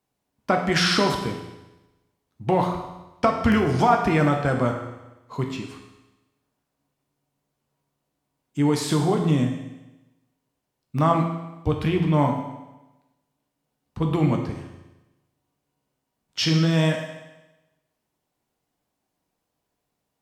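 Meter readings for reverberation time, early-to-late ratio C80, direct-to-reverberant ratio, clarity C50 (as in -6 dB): 1.0 s, 7.5 dB, 2.0 dB, 5.5 dB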